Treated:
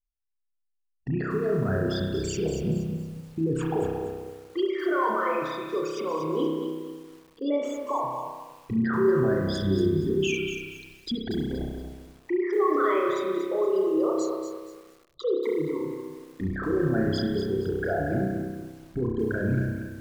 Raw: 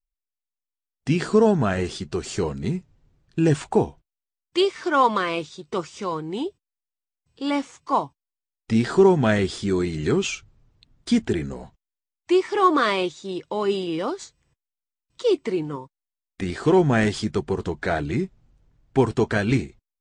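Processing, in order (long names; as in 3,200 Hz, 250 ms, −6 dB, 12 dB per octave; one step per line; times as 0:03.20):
spectral envelope exaggerated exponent 3
in parallel at 0 dB: downward compressor 10 to 1, threshold −25 dBFS, peak gain reduction 14 dB
on the sum: brickwall limiter −14.5 dBFS, peak gain reduction 9 dB
spring reverb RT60 1.3 s, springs 31 ms, chirp 70 ms, DRR −1 dB
feedback echo at a low word length 236 ms, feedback 35%, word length 7 bits, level −7.5 dB
level −7.5 dB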